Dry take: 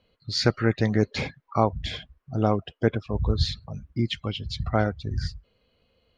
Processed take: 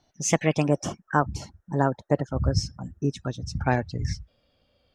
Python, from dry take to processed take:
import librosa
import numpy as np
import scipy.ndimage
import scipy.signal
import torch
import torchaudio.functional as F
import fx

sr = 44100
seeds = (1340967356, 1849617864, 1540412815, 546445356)

y = fx.speed_glide(x, sr, from_pct=141, to_pct=109)
y = fx.spec_box(y, sr, start_s=0.68, length_s=2.96, low_hz=1900.0, high_hz=5100.0, gain_db=-13)